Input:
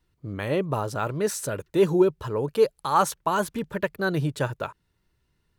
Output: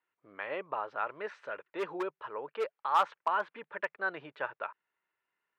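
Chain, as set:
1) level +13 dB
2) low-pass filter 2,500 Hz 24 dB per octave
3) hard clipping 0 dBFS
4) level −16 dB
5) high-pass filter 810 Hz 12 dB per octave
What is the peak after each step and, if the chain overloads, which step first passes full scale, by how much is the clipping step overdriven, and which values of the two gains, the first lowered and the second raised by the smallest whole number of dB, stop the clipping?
+4.5, +4.5, 0.0, −16.0, −14.0 dBFS
step 1, 4.5 dB
step 1 +8 dB, step 4 −11 dB

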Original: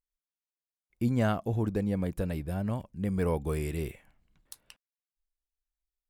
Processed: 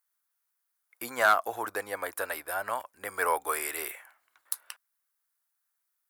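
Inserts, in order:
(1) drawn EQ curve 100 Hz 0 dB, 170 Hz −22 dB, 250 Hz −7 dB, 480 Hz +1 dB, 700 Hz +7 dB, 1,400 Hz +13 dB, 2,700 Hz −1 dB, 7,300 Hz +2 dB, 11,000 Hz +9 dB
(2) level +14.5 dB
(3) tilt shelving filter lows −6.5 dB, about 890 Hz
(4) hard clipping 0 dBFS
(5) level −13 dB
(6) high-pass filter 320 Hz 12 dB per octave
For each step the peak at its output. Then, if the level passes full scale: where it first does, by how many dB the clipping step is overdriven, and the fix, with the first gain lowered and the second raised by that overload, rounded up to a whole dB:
−9.5, +5.0, +7.5, 0.0, −13.0, −10.0 dBFS
step 2, 7.5 dB
step 2 +6.5 dB, step 5 −5 dB

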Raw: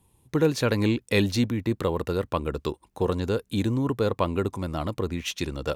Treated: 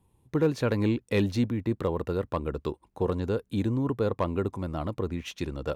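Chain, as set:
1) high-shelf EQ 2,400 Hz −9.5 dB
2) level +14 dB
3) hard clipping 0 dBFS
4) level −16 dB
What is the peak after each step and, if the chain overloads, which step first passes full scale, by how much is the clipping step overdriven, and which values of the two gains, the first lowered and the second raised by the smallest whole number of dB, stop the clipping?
−9.5, +4.5, 0.0, −16.0 dBFS
step 2, 4.5 dB
step 2 +9 dB, step 4 −11 dB

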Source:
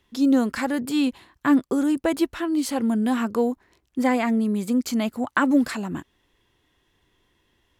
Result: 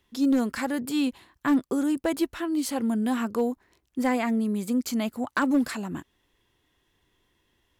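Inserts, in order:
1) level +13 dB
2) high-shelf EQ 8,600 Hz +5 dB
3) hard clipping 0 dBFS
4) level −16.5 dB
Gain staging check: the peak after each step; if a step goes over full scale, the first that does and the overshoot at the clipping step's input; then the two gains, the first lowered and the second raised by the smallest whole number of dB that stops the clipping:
+6.5, +6.5, 0.0, −16.5 dBFS
step 1, 6.5 dB
step 1 +6 dB, step 4 −9.5 dB

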